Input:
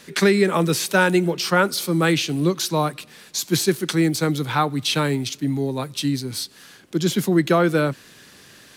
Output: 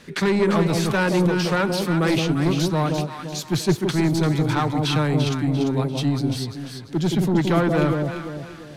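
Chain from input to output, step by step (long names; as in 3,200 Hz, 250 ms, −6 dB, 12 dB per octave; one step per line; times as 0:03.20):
low-pass filter 3,300 Hz 6 dB per octave
low-shelf EQ 140 Hz +9.5 dB
soft clipping −15.5 dBFS, distortion −11 dB
delay that swaps between a low-pass and a high-pass 172 ms, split 850 Hz, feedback 61%, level −2.5 dB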